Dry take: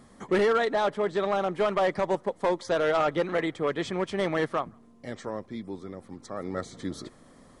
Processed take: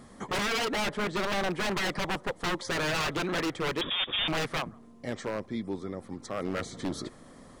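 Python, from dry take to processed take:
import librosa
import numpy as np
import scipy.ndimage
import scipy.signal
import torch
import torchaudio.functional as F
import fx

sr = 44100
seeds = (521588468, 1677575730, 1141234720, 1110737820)

y = fx.rattle_buzz(x, sr, strikes_db=-32.0, level_db=-34.0)
y = 10.0 ** (-27.0 / 20.0) * (np.abs((y / 10.0 ** (-27.0 / 20.0) + 3.0) % 4.0 - 2.0) - 1.0)
y = fx.freq_invert(y, sr, carrier_hz=3600, at=(3.81, 4.28))
y = y * 10.0 ** (3.0 / 20.0)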